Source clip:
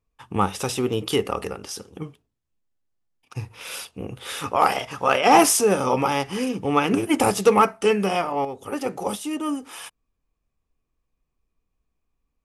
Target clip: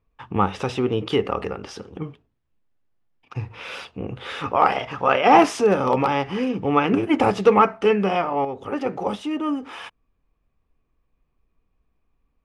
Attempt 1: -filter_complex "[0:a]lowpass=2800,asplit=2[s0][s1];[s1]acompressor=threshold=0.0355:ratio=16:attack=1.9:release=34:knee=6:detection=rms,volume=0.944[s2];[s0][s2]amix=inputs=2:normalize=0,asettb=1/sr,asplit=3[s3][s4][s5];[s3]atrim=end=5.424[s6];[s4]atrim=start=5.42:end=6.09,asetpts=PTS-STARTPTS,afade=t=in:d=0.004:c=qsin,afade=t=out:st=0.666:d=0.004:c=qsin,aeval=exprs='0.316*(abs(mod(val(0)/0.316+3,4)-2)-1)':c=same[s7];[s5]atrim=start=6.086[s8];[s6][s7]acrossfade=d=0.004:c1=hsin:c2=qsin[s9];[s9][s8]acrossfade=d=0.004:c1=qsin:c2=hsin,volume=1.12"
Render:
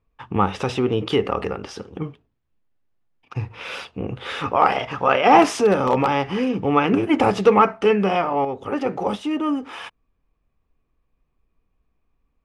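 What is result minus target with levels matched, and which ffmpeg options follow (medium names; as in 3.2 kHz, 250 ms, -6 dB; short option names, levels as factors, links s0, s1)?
compression: peak gain reduction -11 dB
-filter_complex "[0:a]lowpass=2800,asplit=2[s0][s1];[s1]acompressor=threshold=0.00944:ratio=16:attack=1.9:release=34:knee=6:detection=rms,volume=0.944[s2];[s0][s2]amix=inputs=2:normalize=0,asettb=1/sr,asplit=3[s3][s4][s5];[s3]atrim=end=5.424[s6];[s4]atrim=start=5.42:end=6.09,asetpts=PTS-STARTPTS,afade=t=in:d=0.004:c=qsin,afade=t=out:st=0.666:d=0.004:c=qsin,aeval=exprs='0.316*(abs(mod(val(0)/0.316+3,4)-2)-1)':c=same[s7];[s5]atrim=start=6.086[s8];[s6][s7]acrossfade=d=0.004:c1=hsin:c2=qsin[s9];[s9][s8]acrossfade=d=0.004:c1=qsin:c2=hsin,volume=1.12"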